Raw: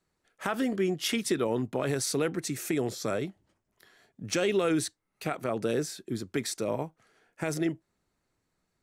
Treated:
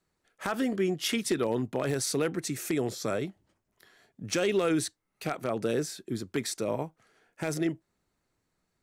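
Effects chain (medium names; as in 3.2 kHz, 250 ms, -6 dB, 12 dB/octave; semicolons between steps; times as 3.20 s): wavefolder -18.5 dBFS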